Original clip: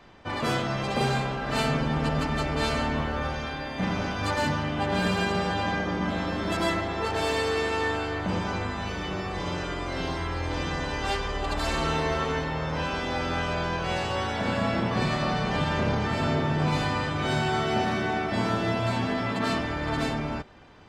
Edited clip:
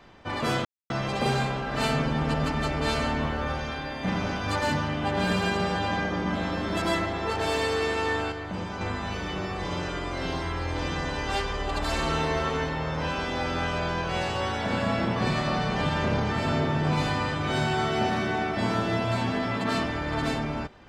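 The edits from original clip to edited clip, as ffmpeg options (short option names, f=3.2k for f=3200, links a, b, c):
-filter_complex "[0:a]asplit=4[a][b][c][d];[a]atrim=end=0.65,asetpts=PTS-STARTPTS,afade=t=out:st=0.646:d=0.004:c=hsin,apad=pad_dur=0.25[e];[b]atrim=start=0.65:end=8.072,asetpts=PTS-STARTPTS,afade=t=in:d=0.004:c=hsin[f];[c]atrim=start=8.068:end=8.562,asetpts=PTS-STARTPTS,volume=-5dB[g];[d]atrim=start=8.558[h];[e][f]concat=n=2:v=0:a=1[i];[i][g]acrossfade=d=0.004:c1=hsin:c2=hsin[j];[j][h]acrossfade=d=0.004:c1=hsin:c2=hsin"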